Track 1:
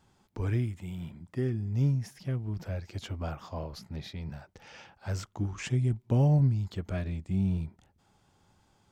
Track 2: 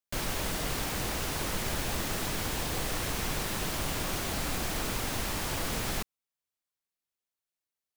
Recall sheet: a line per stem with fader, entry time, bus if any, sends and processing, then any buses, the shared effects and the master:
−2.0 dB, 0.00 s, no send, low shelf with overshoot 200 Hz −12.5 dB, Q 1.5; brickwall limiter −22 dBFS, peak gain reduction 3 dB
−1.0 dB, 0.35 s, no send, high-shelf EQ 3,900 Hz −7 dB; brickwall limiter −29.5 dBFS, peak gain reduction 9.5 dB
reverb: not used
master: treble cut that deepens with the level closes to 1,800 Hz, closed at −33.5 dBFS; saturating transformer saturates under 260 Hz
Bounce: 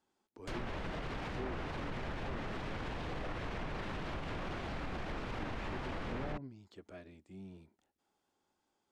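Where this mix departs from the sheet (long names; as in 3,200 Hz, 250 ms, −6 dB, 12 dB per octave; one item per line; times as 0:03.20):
stem 1 −2.0 dB → −13.5 dB
master: missing saturating transformer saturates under 260 Hz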